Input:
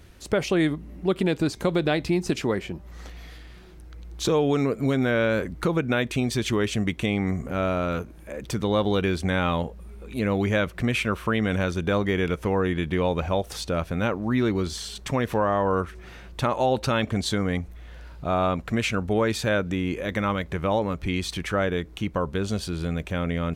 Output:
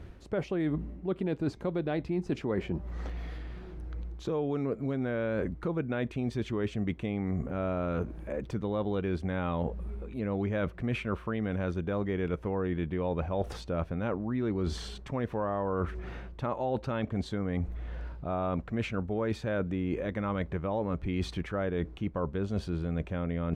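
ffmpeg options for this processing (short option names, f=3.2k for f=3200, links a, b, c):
-af "lowpass=f=1k:p=1,areverse,acompressor=threshold=-33dB:ratio=6,areverse,volume=4.5dB"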